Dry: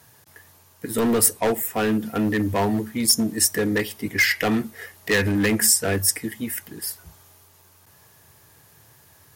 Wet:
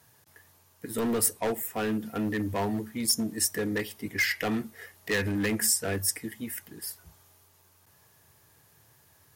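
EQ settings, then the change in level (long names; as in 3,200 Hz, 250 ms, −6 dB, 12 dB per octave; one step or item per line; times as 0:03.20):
no EQ move
−7.5 dB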